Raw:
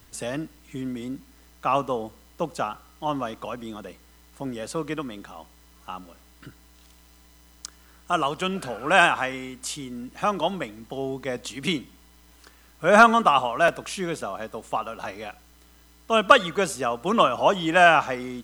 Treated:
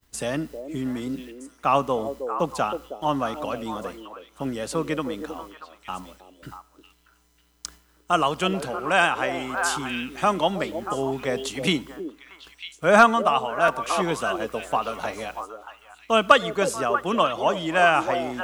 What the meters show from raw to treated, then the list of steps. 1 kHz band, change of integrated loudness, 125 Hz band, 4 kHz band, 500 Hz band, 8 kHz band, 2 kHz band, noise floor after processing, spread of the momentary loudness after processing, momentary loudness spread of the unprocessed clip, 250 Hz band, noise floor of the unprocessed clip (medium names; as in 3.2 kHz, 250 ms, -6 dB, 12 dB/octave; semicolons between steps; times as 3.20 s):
0.0 dB, -0.5 dB, +1.5 dB, +0.5 dB, +0.5 dB, +1.5 dB, -1.0 dB, -61 dBFS, 19 LU, 20 LU, +1.5 dB, -54 dBFS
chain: expander -44 dBFS; repeats whose band climbs or falls 317 ms, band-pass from 430 Hz, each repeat 1.4 oct, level -5 dB; gain riding within 3 dB 0.5 s